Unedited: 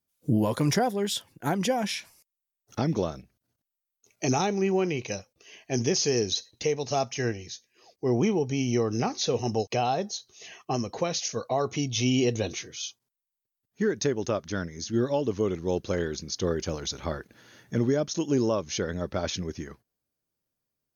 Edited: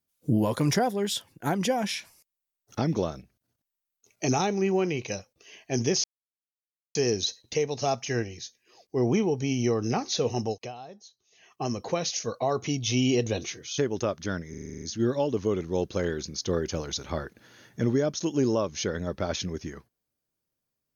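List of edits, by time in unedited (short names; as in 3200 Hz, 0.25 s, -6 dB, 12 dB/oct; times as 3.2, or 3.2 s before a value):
6.04 insert silence 0.91 s
9.46–10.83 dip -16.5 dB, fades 0.37 s
12.87–14.04 cut
14.76 stutter 0.04 s, 9 plays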